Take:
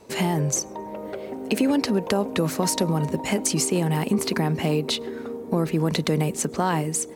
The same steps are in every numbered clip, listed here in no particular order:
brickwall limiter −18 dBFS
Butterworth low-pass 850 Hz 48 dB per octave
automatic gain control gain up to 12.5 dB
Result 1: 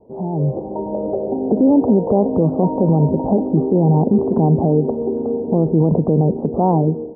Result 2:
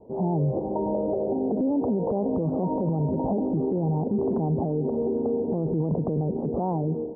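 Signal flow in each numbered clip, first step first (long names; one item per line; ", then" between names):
Butterworth low-pass, then brickwall limiter, then automatic gain control
Butterworth low-pass, then automatic gain control, then brickwall limiter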